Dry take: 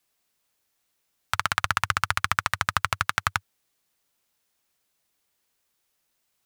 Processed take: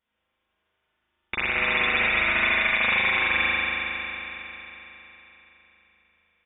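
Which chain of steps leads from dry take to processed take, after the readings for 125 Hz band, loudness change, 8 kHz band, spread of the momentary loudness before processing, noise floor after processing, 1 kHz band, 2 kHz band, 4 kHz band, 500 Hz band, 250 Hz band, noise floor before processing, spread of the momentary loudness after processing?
-6.5 dB, +4.0 dB, under -40 dB, 4 LU, -78 dBFS, -3.0 dB, +7.0 dB, +3.5 dB, +10.0 dB, +9.5 dB, -75 dBFS, 16 LU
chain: rattle on loud lows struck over -38 dBFS, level -24 dBFS; comb 7.1 ms, depth 65%; frequency inversion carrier 3.6 kHz; spring tank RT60 3.8 s, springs 38 ms, chirp 50 ms, DRR -8 dB; peak limiter -7.5 dBFS, peak gain reduction 5 dB; trim -4 dB

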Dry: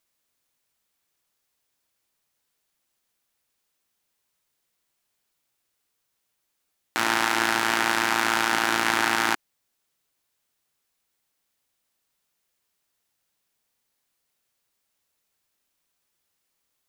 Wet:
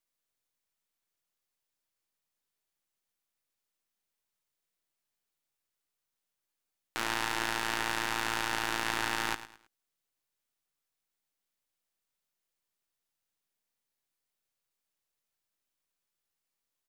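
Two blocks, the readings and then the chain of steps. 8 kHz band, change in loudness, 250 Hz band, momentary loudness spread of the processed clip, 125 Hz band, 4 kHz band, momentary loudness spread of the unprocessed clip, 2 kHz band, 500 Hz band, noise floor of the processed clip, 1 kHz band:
-8.5 dB, -9.5 dB, -10.5 dB, 4 LU, -4.0 dB, -7.5 dB, 4 LU, -9.5 dB, -9.5 dB, under -85 dBFS, -10.0 dB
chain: partial rectifier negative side -7 dB; feedback delay 107 ms, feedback 31%, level -14 dB; trim -8 dB

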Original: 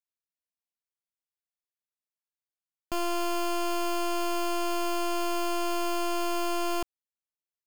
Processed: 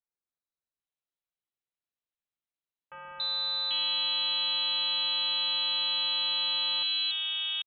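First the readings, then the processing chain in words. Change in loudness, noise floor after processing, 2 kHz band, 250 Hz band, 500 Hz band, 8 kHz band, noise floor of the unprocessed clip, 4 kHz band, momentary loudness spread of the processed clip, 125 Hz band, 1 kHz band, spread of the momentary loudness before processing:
+3.5 dB, under -85 dBFS, +0.5 dB, under -30 dB, -19.5 dB, under -40 dB, under -85 dBFS, +14.5 dB, 3 LU, no reading, -10.5 dB, 2 LU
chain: partial rectifier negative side -3 dB; three bands offset in time highs, lows, mids 280/790 ms, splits 330/2200 Hz; frequency inversion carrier 4 kHz; trim +2 dB

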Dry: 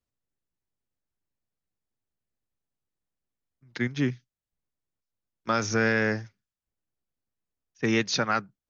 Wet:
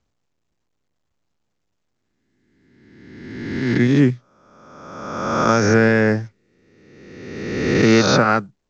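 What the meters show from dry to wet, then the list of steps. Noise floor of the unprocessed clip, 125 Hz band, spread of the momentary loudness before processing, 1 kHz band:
under -85 dBFS, +13.0 dB, 13 LU, +10.5 dB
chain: reverse spectral sustain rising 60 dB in 1.62 s; tilt shelf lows +5.5 dB, about 1.3 kHz; trim +5.5 dB; µ-law 128 kbps 16 kHz

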